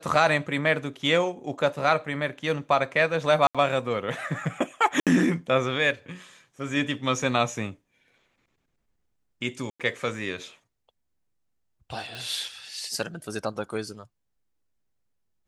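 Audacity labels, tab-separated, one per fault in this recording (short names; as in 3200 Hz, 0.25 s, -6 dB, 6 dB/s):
3.470000	3.550000	gap 76 ms
5.000000	5.070000	gap 67 ms
9.700000	9.800000	gap 96 ms
12.150000	12.150000	pop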